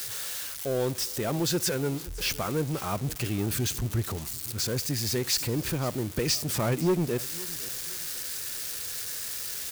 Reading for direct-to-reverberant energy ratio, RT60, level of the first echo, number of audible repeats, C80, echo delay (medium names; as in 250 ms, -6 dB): no reverb, no reverb, -20.0 dB, 2, no reverb, 513 ms